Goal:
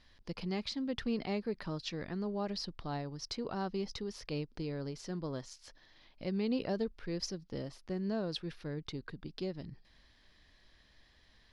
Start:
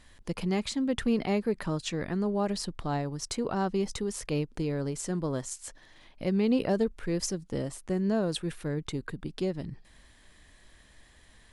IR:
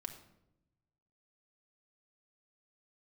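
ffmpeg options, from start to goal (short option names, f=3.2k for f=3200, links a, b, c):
-af "highshelf=f=6.4k:t=q:w=3:g=-9.5,volume=-8dB"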